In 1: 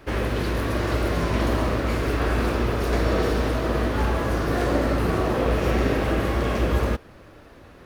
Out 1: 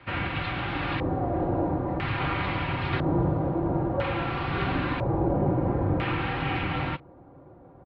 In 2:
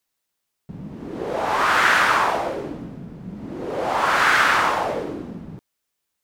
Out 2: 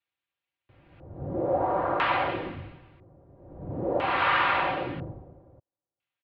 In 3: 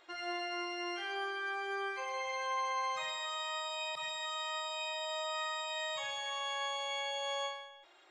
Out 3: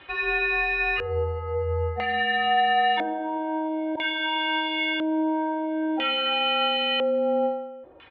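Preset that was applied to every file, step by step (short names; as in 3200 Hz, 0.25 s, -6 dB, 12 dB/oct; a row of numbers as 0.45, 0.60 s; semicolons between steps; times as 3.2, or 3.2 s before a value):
elliptic band-pass 390–4600 Hz, stop band 40 dB; comb 4.7 ms, depth 57%; LFO low-pass square 0.5 Hz 880–3000 Hz; frequency shift -310 Hz; normalise peaks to -12 dBFS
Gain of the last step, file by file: -3.0, -10.0, +10.0 dB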